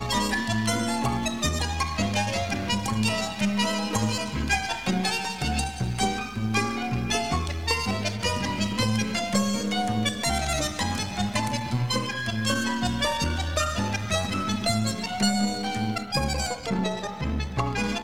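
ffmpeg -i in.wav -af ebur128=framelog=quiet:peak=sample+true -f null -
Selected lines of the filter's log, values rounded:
Integrated loudness:
  I:         -26.2 LUFS
  Threshold: -36.2 LUFS
Loudness range:
  LRA:         0.9 LU
  Threshold: -46.2 LUFS
  LRA low:   -26.7 LUFS
  LRA high:  -25.8 LUFS
Sample peak:
  Peak:       -9.9 dBFS
True peak:
  Peak:       -9.8 dBFS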